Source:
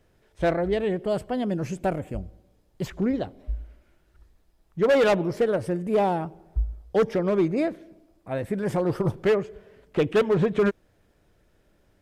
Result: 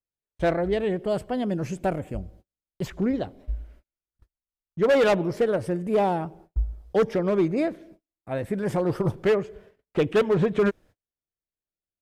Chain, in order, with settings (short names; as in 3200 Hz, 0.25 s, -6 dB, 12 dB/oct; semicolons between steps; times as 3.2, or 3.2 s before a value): gate -49 dBFS, range -38 dB